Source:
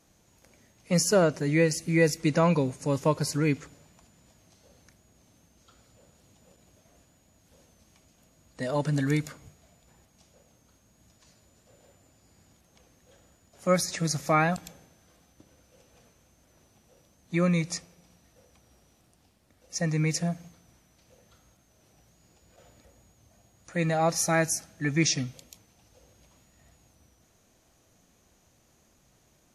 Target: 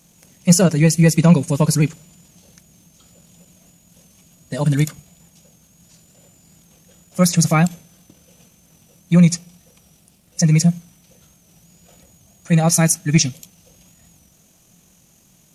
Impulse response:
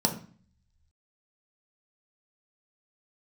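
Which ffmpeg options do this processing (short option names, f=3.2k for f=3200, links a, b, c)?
-af "equalizer=f=170:w=2.8:g=12,atempo=1.9,aexciter=amount=2.1:drive=4.9:freq=2.5k,acontrast=28"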